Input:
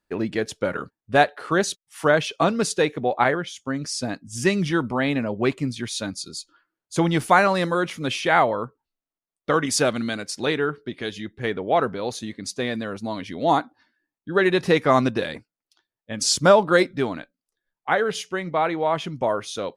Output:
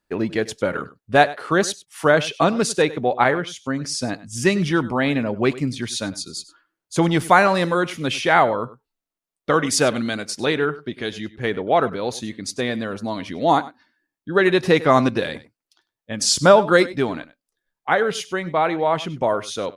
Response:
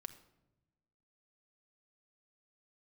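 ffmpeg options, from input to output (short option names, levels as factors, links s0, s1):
-af "aecho=1:1:98:0.126,volume=1.33"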